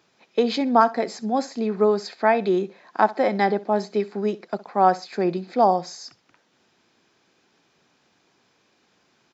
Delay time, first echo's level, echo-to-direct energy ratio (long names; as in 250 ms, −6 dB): 64 ms, −19.0 dB, −19.0 dB